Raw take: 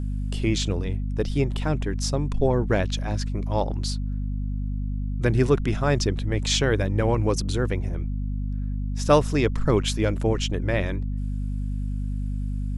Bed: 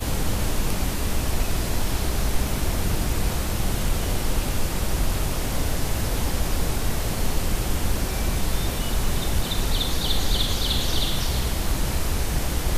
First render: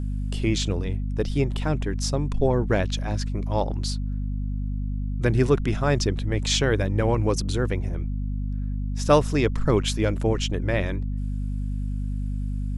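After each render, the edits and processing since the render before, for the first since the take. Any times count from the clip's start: nothing audible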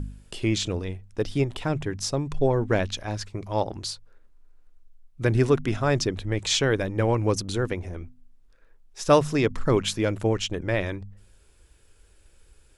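de-hum 50 Hz, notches 5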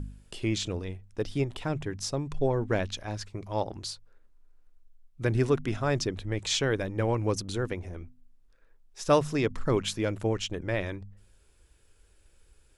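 gain -4.5 dB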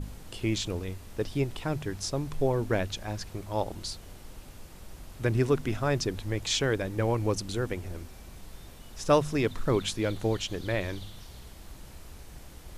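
add bed -22.5 dB

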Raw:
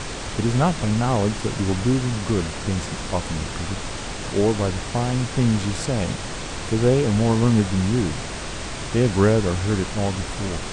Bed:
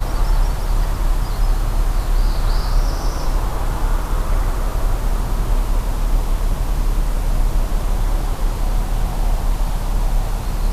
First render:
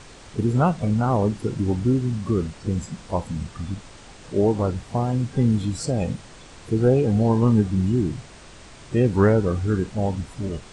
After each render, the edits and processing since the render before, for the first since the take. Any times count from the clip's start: noise print and reduce 14 dB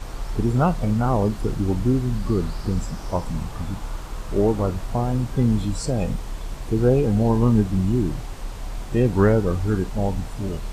add bed -12.5 dB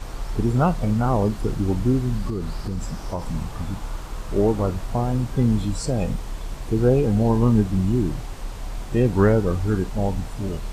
2.29–3.26 compressor 5:1, threshold -22 dBFS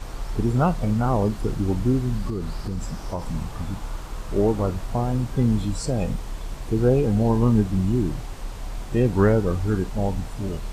gain -1 dB

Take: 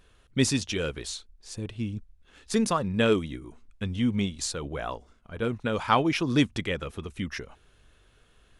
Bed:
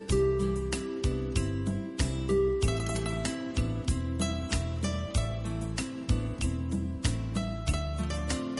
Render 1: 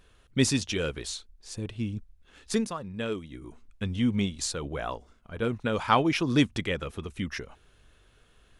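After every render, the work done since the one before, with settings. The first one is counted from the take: 2.53–3.45 dip -9.5 dB, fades 0.15 s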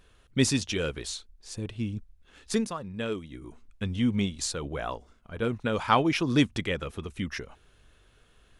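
nothing audible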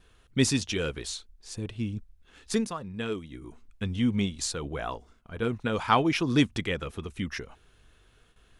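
notch 570 Hz, Q 12; gate with hold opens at -51 dBFS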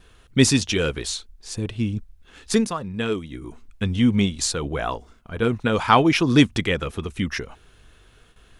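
gain +7.5 dB; limiter -1 dBFS, peak gain reduction 1.5 dB

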